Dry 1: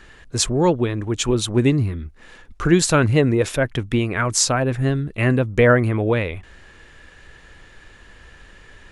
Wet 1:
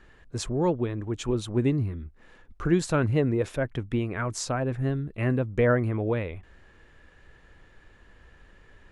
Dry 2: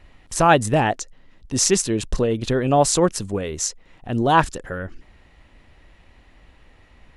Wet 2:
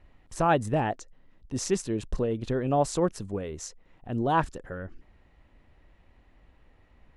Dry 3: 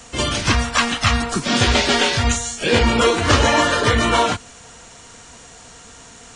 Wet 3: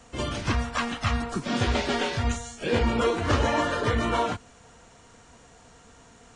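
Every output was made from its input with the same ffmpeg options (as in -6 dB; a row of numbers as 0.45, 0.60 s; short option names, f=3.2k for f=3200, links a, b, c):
-af "highshelf=f=2.1k:g=-9.5,volume=-7dB"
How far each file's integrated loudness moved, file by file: -8.0, -8.5, -9.5 LU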